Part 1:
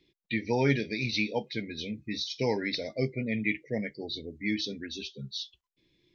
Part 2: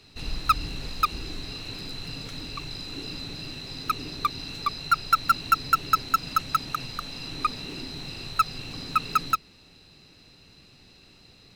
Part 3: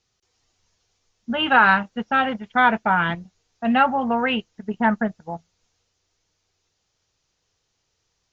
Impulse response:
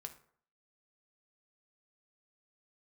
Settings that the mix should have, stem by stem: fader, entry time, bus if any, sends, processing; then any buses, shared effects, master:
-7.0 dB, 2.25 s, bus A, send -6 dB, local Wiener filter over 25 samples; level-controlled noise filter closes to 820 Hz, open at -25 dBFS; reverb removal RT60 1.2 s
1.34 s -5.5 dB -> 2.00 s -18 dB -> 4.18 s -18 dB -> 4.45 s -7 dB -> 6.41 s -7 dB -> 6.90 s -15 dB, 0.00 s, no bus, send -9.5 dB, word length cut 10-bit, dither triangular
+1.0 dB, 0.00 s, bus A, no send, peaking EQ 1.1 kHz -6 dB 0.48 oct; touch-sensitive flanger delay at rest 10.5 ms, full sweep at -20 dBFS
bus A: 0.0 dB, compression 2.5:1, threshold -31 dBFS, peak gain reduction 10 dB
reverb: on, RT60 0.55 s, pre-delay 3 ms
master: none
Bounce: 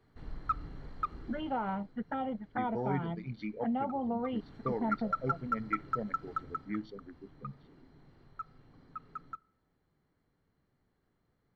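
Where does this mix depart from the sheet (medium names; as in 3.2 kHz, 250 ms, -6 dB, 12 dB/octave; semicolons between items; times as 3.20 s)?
stem 2 -5.5 dB -> -11.5 dB; stem 3 +1.0 dB -> -7.5 dB; master: extra Savitzky-Golay filter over 41 samples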